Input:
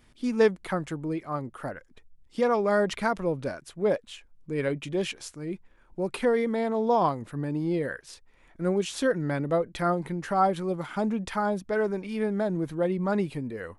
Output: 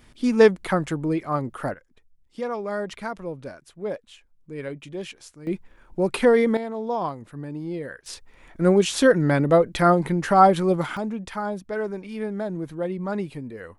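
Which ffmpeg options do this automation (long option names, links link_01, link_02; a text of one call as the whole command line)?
ffmpeg -i in.wav -af "asetnsamples=nb_out_samples=441:pad=0,asendcmd='1.74 volume volume -5dB;5.47 volume volume 7dB;6.57 volume volume -3.5dB;8.06 volume volume 8.5dB;10.97 volume volume -1.5dB',volume=6.5dB" out.wav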